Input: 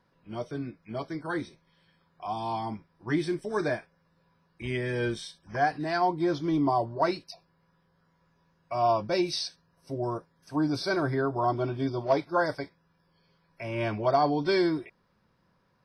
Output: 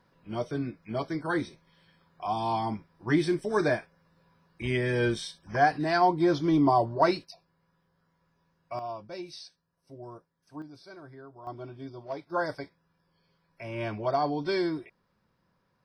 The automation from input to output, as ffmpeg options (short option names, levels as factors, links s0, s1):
-af "asetnsamples=n=441:p=0,asendcmd='7.25 volume volume -3.5dB;8.79 volume volume -13dB;10.62 volume volume -20dB;11.47 volume volume -12dB;12.3 volume volume -3.5dB',volume=1.41"